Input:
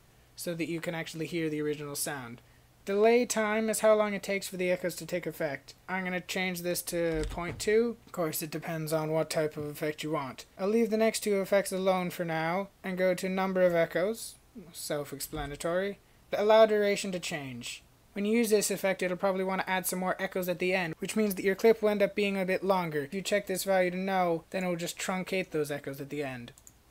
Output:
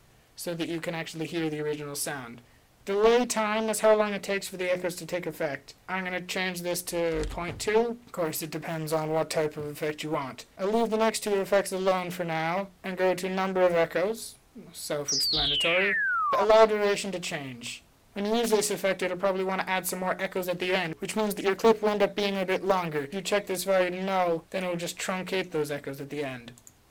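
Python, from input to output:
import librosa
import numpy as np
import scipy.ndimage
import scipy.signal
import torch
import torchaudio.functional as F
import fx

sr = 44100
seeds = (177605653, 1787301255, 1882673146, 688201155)

y = fx.spec_paint(x, sr, seeds[0], shape='fall', start_s=15.08, length_s=1.37, low_hz=930.0, high_hz=5900.0, level_db=-29.0)
y = fx.hum_notches(y, sr, base_hz=60, count=7)
y = fx.doppler_dist(y, sr, depth_ms=0.6)
y = F.gain(torch.from_numpy(y), 2.5).numpy()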